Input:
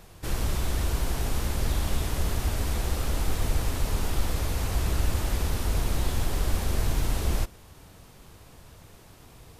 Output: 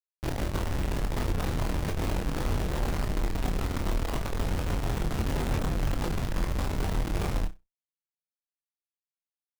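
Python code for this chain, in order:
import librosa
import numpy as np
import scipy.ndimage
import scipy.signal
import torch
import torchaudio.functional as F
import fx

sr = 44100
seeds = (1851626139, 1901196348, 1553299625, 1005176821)

y = fx.schmitt(x, sr, flips_db=-32.0)
y = fx.room_flutter(y, sr, wall_m=5.5, rt60_s=0.21)
y = fx.chorus_voices(y, sr, voices=6, hz=1.5, base_ms=23, depth_ms=3.0, mix_pct=35)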